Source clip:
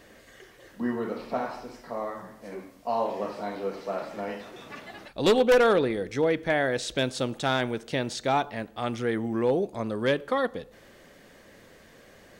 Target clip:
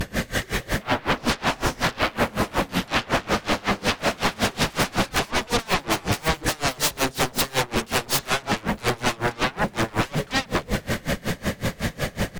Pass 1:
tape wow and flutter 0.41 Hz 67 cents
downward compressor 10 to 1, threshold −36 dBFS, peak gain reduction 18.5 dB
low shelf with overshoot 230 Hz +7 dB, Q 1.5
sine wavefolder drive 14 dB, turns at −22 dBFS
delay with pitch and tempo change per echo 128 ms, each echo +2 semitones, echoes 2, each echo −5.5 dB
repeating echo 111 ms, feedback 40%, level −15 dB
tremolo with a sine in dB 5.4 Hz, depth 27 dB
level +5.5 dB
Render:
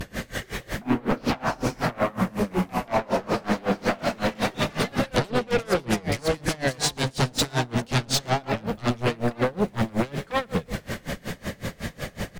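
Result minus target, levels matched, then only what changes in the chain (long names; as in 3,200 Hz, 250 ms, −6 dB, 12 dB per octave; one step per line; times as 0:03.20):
sine wavefolder: distortion −17 dB
change: sine wavefolder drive 22 dB, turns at −22 dBFS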